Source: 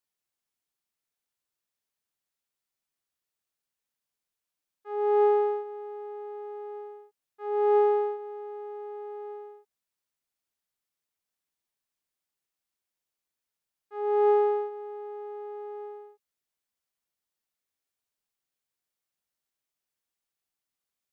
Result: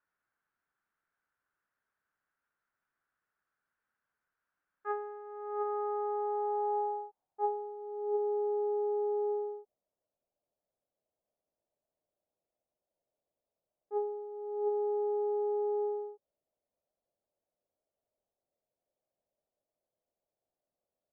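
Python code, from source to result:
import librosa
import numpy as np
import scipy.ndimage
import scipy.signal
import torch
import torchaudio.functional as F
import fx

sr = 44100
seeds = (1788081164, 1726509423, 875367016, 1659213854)

y = fx.over_compress(x, sr, threshold_db=-35.0, ratio=-1.0)
y = fx.filter_sweep_lowpass(y, sr, from_hz=1500.0, to_hz=610.0, start_s=5.12, end_s=8.12, q=4.7)
y = y * 10.0 ** (-3.5 / 20.0)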